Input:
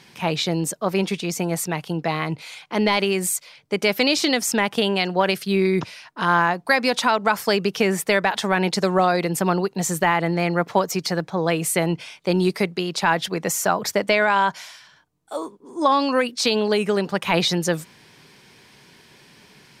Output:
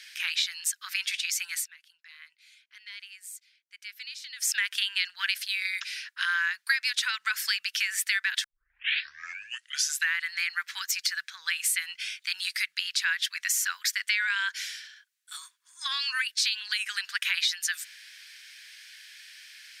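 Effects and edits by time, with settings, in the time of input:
1.52–4.52 s: dip -22.5 dB, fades 0.16 s
8.44 s: tape start 1.72 s
whole clip: elliptic high-pass 1.6 kHz, stop band 60 dB; compression 2.5:1, threshold -31 dBFS; trim +4.5 dB

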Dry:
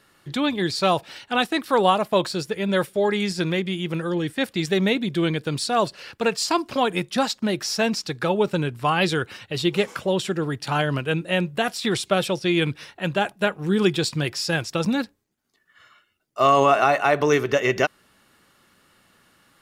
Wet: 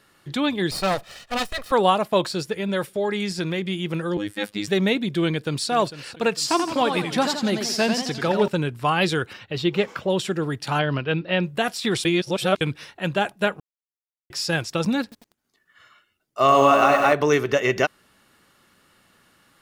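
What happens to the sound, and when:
0.71–1.72 s: comb filter that takes the minimum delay 1.6 ms
2.60–3.62 s: compression 1.5:1, threshold -25 dBFS
4.17–4.68 s: robot voice 103 Hz
5.26–5.70 s: echo throw 450 ms, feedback 45%, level -14.5 dB
6.39–8.48 s: modulated delay 87 ms, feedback 53%, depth 166 cents, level -6.5 dB
9.33–10.10 s: peaking EQ 10 kHz -14 dB 1.1 oct
10.79–11.44 s: careless resampling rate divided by 4×, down none, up filtered
12.05–12.61 s: reverse
13.60–14.30 s: mute
15.02–17.13 s: bit-crushed delay 97 ms, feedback 80%, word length 7-bit, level -7 dB

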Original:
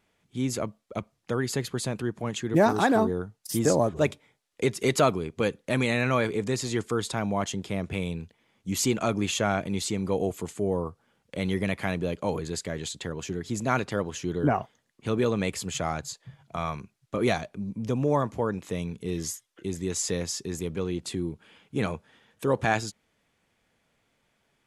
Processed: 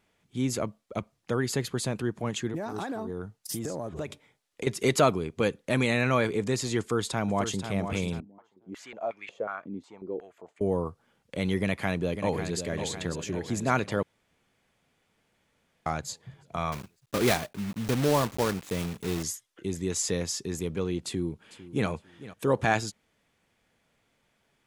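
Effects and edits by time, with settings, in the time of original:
2.48–4.67 s: compression 16:1, threshold -29 dBFS
6.79–7.70 s: echo throw 490 ms, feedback 40%, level -8.5 dB
8.20–10.61 s: step-sequenced band-pass 5.5 Hz 270–2200 Hz
11.59–12.60 s: echo throw 550 ms, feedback 60%, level -8.5 dB
14.03–15.86 s: room tone
16.72–19.25 s: block-companded coder 3-bit
21.01–21.88 s: echo throw 450 ms, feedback 25%, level -16.5 dB

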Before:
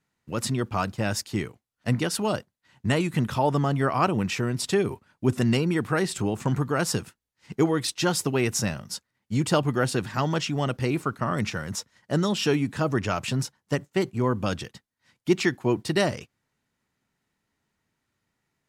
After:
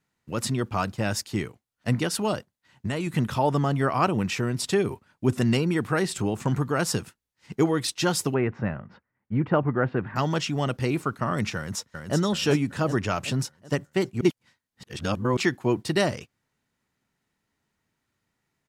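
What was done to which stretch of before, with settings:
2.33–3.07 s: compression, threshold -24 dBFS
8.34–10.16 s: low-pass 2 kHz 24 dB/octave
11.56–12.17 s: echo throw 380 ms, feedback 50%, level -5 dB
14.21–15.37 s: reverse

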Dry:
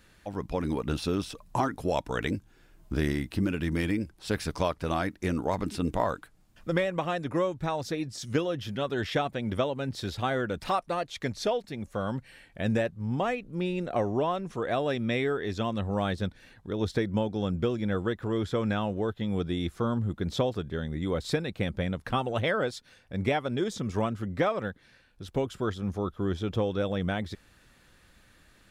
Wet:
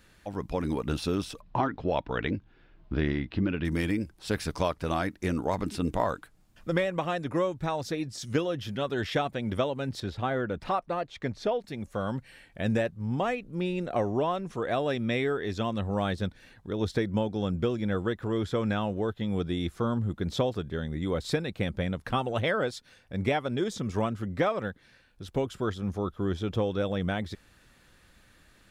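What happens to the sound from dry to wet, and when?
1.41–3.65 s: low-pass 3.9 kHz 24 dB/octave
10.00–11.62 s: low-pass 2 kHz 6 dB/octave

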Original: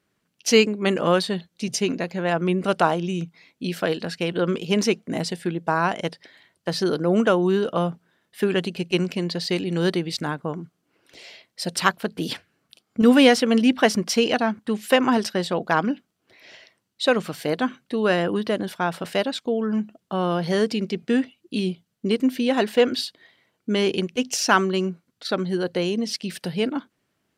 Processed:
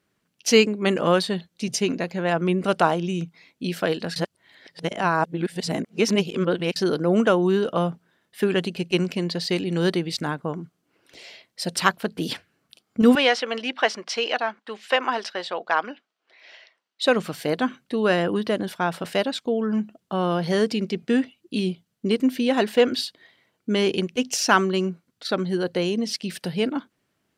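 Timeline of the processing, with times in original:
4.16–6.76 s: reverse
13.15–17.02 s: band-pass 620–4600 Hz

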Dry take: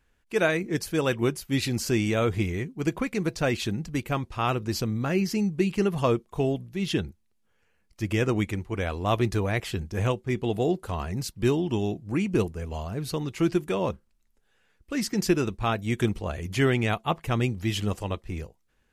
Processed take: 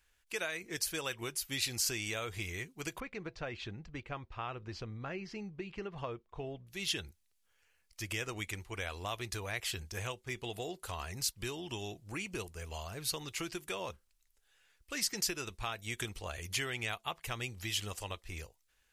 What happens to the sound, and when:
3.00–6.67 s: tape spacing loss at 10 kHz 37 dB
whole clip: peaking EQ 210 Hz -11 dB 1.8 oct; compression 4:1, threshold -32 dBFS; treble shelf 2 kHz +11.5 dB; trim -6.5 dB

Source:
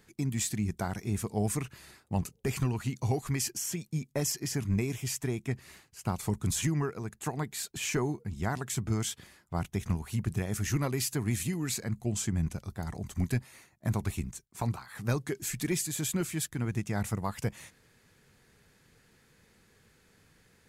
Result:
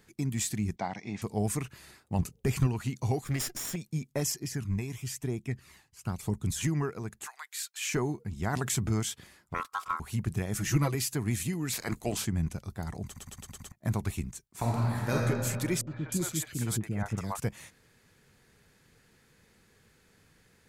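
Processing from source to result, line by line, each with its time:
0.76–1.22 s: cabinet simulation 200–5400 Hz, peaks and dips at 390 Hz -8 dB, 810 Hz +6 dB, 1.4 kHz -8 dB, 2.1 kHz +6 dB
2.19–2.67 s: bass shelf 200 Hz +6.5 dB
3.24–3.76 s: comb filter that takes the minimum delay 0.57 ms
4.34–6.61 s: flange 1 Hz, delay 0.1 ms, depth 1.1 ms, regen +41%
7.26–7.93 s: high-pass 1.2 kHz 24 dB/octave
8.53–9.00 s: level flattener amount 50%
9.54–10.00 s: ring modulator 1.2 kHz
10.54–10.95 s: comb 6.1 ms, depth 84%
11.72–12.24 s: spectral peaks clipped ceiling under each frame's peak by 20 dB
13.06 s: stutter in place 0.11 s, 6 plays
14.47–15.14 s: reverb throw, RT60 2.3 s, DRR -4 dB
15.81–17.40 s: three bands offset in time lows, mids, highs 60/310 ms, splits 500/2400 Hz

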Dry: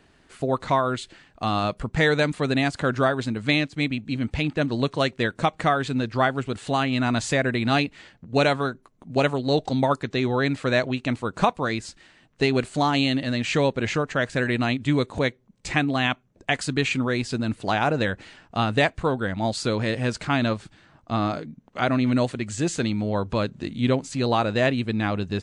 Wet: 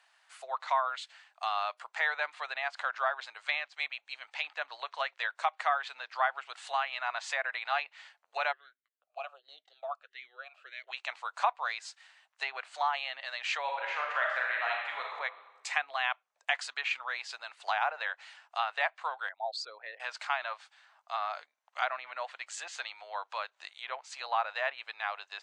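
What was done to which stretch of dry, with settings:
8.51–10.87 s: talking filter a-i 0.97 Hz -> 2.1 Hz
13.61–15.11 s: reverb throw, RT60 1.4 s, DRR -1.5 dB
19.29–20.00 s: resonances exaggerated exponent 2
whole clip: low-pass that closes with the level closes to 2.2 kHz, closed at -17.5 dBFS; steep high-pass 740 Hz 36 dB/octave; trim -4.5 dB

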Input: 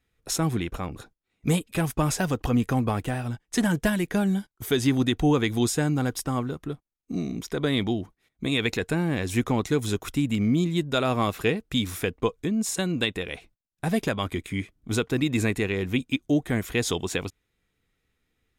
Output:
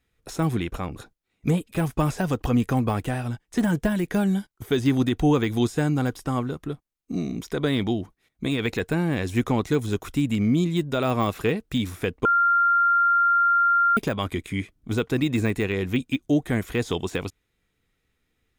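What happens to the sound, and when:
12.25–13.97 s: bleep 1.39 kHz -17.5 dBFS
whole clip: de-esser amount 85%; trim +1.5 dB

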